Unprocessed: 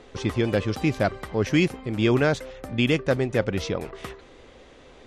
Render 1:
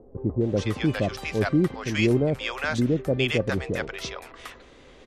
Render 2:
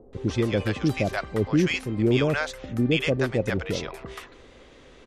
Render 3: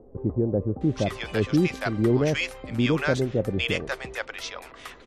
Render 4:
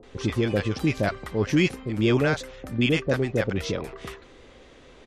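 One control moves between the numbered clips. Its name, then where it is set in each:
bands offset in time, time: 410 ms, 130 ms, 810 ms, 30 ms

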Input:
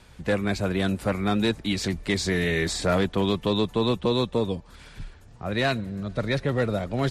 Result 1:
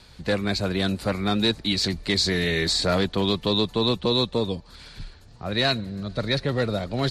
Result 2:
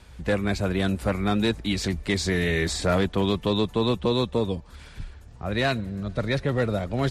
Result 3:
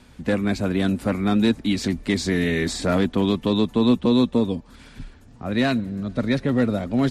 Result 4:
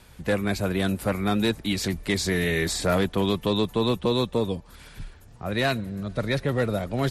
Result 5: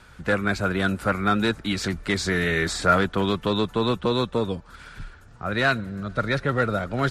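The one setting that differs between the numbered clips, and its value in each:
peaking EQ, frequency: 4.3 kHz, 63 Hz, 250 Hz, 12 kHz, 1.4 kHz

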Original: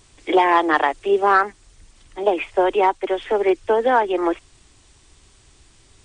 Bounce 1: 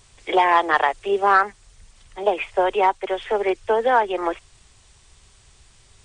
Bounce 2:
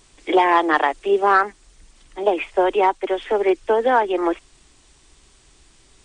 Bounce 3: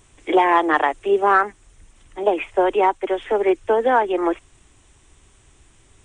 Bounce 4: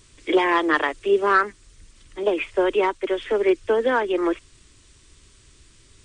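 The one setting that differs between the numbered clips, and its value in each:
peaking EQ, frequency: 300 Hz, 94 Hz, 4.6 kHz, 780 Hz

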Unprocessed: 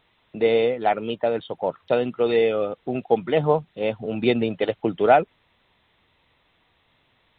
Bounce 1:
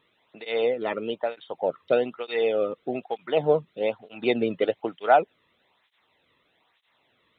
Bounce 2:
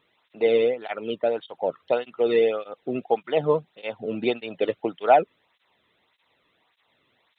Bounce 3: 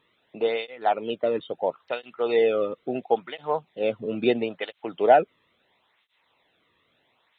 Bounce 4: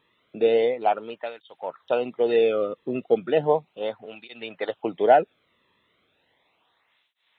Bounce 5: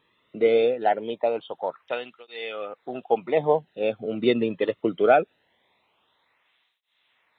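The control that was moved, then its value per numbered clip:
cancelling through-zero flanger, nulls at: 1.1 Hz, 1.7 Hz, 0.74 Hz, 0.35 Hz, 0.22 Hz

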